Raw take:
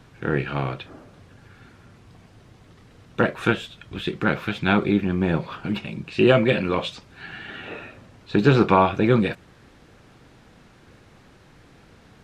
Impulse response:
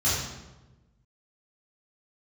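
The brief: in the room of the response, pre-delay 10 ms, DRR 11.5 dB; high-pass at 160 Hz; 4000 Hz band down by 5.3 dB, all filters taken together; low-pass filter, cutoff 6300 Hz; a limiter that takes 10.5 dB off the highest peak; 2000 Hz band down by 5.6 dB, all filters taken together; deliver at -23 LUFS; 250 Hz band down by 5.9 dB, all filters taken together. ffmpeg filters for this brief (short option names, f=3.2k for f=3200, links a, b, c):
-filter_complex "[0:a]highpass=160,lowpass=6.3k,equalizer=f=250:t=o:g=-7,equalizer=f=2k:t=o:g=-7,equalizer=f=4k:t=o:g=-3.5,alimiter=limit=-16dB:level=0:latency=1,asplit=2[a][b];[1:a]atrim=start_sample=2205,adelay=10[c];[b][c]afir=irnorm=-1:irlink=0,volume=-24dB[d];[a][d]amix=inputs=2:normalize=0,volume=6.5dB"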